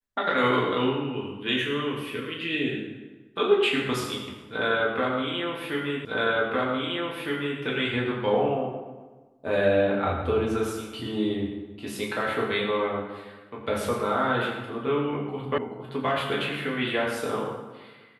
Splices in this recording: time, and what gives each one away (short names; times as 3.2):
6.05 repeat of the last 1.56 s
15.58 sound cut off